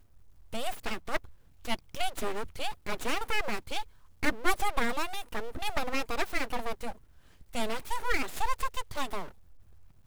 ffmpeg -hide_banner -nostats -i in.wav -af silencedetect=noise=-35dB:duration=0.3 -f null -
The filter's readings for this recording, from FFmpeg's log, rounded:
silence_start: 0.00
silence_end: 0.53 | silence_duration: 0.53
silence_start: 1.17
silence_end: 1.65 | silence_duration: 0.48
silence_start: 3.82
silence_end: 4.23 | silence_duration: 0.41
silence_start: 6.92
silence_end: 7.54 | silence_duration: 0.62
silence_start: 9.28
silence_end: 10.07 | silence_duration: 0.78